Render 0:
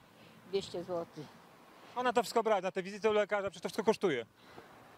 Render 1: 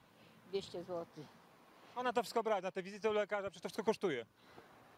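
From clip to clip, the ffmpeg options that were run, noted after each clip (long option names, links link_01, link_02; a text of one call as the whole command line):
ffmpeg -i in.wav -af "bandreject=frequency=7800:width=16,volume=-5.5dB" out.wav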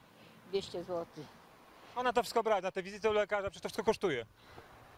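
ffmpeg -i in.wav -af "asubboost=boost=7.5:cutoff=74,volume=5.5dB" out.wav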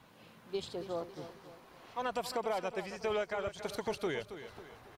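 ffmpeg -i in.wav -filter_complex "[0:a]alimiter=level_in=2dB:limit=-24dB:level=0:latency=1:release=59,volume=-2dB,asplit=2[link_01][link_02];[link_02]aecho=0:1:274|548|822|1096:0.266|0.117|0.0515|0.0227[link_03];[link_01][link_03]amix=inputs=2:normalize=0" out.wav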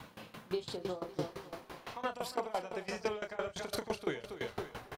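ffmpeg -i in.wav -filter_complex "[0:a]acompressor=threshold=-41dB:ratio=10,asplit=2[link_01][link_02];[link_02]adelay=33,volume=-6.5dB[link_03];[link_01][link_03]amix=inputs=2:normalize=0,aeval=exprs='val(0)*pow(10,-20*if(lt(mod(5.9*n/s,1),2*abs(5.9)/1000),1-mod(5.9*n/s,1)/(2*abs(5.9)/1000),(mod(5.9*n/s,1)-2*abs(5.9)/1000)/(1-2*abs(5.9)/1000))/20)':channel_layout=same,volume=13dB" out.wav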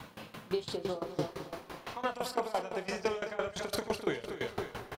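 ffmpeg -i in.wav -af "aecho=1:1:210:0.224,volume=3dB" out.wav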